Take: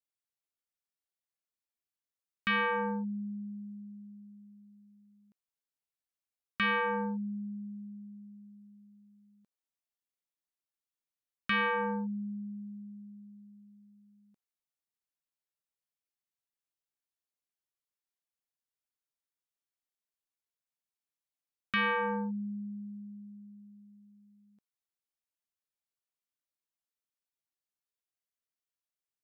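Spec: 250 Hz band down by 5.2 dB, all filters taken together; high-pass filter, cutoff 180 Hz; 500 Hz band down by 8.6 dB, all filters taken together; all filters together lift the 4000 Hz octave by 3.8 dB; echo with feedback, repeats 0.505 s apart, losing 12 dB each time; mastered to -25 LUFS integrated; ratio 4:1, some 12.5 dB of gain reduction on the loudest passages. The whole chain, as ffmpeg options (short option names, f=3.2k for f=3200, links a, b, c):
-af "highpass=180,equalizer=f=250:t=o:g=-3,equalizer=f=500:t=o:g=-8,equalizer=f=4k:t=o:g=6,acompressor=threshold=-41dB:ratio=4,aecho=1:1:505|1010|1515:0.251|0.0628|0.0157,volume=20dB"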